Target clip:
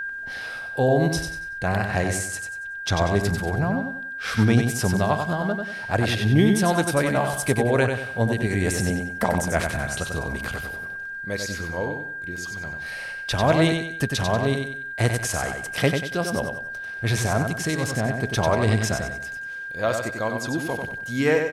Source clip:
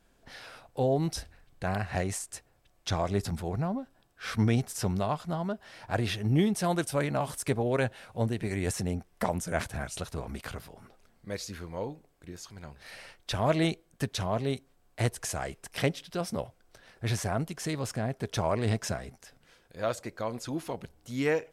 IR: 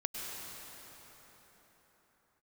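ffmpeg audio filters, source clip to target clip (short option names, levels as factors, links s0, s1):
-af "aeval=exprs='val(0)+0.02*sin(2*PI*1600*n/s)':c=same,aecho=1:1:94|188|282|376:0.531|0.191|0.0688|0.0248,volume=2.11"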